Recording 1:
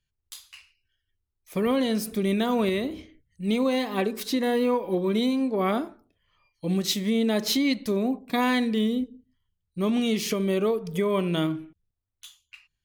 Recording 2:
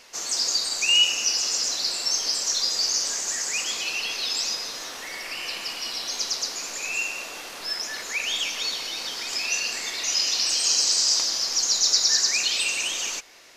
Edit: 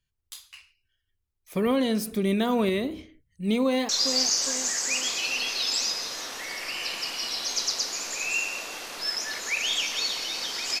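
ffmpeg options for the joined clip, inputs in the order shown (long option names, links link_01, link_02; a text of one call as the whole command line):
ffmpeg -i cue0.wav -i cue1.wav -filter_complex "[0:a]apad=whole_dur=10.8,atrim=end=10.8,atrim=end=3.892[link_01];[1:a]atrim=start=2.518:end=9.43[link_02];[link_01][link_02]acrossfade=duration=0.004:curve1=hsin:curve2=hsin,asplit=2[link_03][link_04];[link_04]afade=type=in:start_time=3.64:duration=0.01,afade=type=out:start_time=3.89:duration=0.01,aecho=0:1:410|820|1230|1640|2050|2460:0.398107|0.199054|0.0995268|0.0497634|0.0248817|0.0124408[link_05];[link_03][link_05]amix=inputs=2:normalize=0" out.wav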